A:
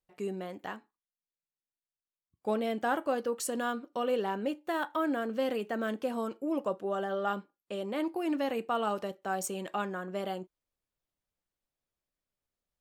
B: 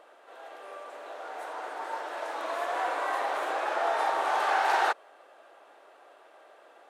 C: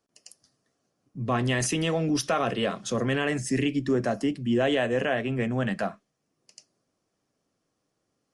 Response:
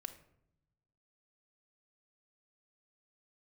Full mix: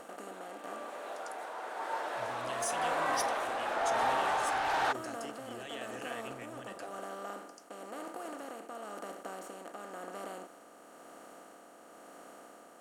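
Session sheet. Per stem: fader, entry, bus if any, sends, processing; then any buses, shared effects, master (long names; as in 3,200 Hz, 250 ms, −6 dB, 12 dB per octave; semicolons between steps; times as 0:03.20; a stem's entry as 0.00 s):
−20.0 dB, 0.00 s, no send, compressor on every frequency bin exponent 0.2; hollow resonant body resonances 690/1,200 Hz, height 8 dB
0.0 dB, 0.00 s, no send, no processing
−6.0 dB, 1.00 s, send −0.5 dB, first-order pre-emphasis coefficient 0.9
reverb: on, RT60 0.75 s, pre-delay 3 ms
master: parametric band 77 Hz +12.5 dB 0.37 octaves; soft clipping −22.5 dBFS, distortion −15 dB; amplitude tremolo 0.98 Hz, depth 37%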